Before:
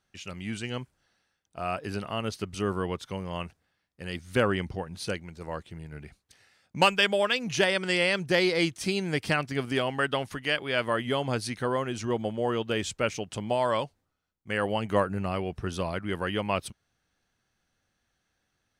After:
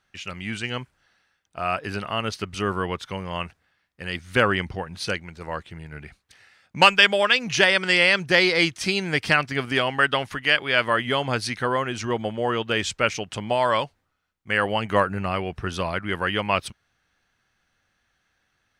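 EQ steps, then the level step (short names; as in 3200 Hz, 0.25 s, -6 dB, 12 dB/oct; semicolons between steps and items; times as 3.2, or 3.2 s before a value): dynamic EQ 5300 Hz, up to +4 dB, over -43 dBFS, Q 1.4; low shelf 150 Hz +4 dB; bell 1800 Hz +9 dB 2.6 oct; 0.0 dB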